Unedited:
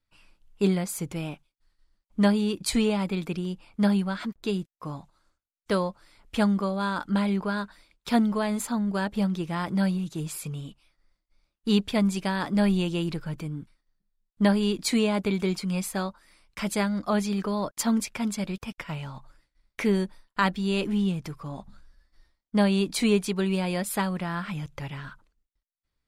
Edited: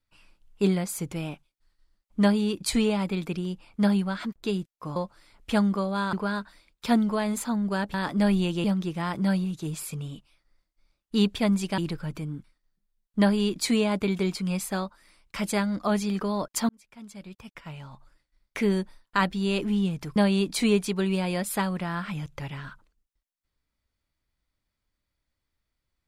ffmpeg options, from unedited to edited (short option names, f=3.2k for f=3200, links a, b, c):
-filter_complex "[0:a]asplit=8[a][b][c][d][e][f][g][h];[a]atrim=end=4.962[i];[b]atrim=start=5.808:end=6.982[j];[c]atrim=start=7.358:end=9.172[k];[d]atrim=start=12.308:end=13.012[l];[e]atrim=start=9.168:end=12.312[m];[f]atrim=start=13.008:end=17.92,asetpts=PTS-STARTPTS,afade=t=out:st=4.908:d=0.004:c=hsin[n];[g]atrim=start=17.92:end=21.392,asetpts=PTS-STARTPTS,afade=t=in:d=2.11[o];[h]atrim=start=22.558[p];[i][j]acrossfade=d=0.004:c1=hsin:c2=hsin[q];[q][k]acrossfade=d=0.004:c1=hsin:c2=hsin[r];[r][l]acrossfade=d=0.004:c1=hsin:c2=hsin[s];[s][m]acrossfade=d=0.004:c1=hsin:c2=hsin[t];[n][o]concat=n=2:v=0:a=1[u];[t][u]acrossfade=d=0.004:c1=hsin:c2=hsin[v];[v][p]acrossfade=d=0.004:c1=hsin:c2=hsin"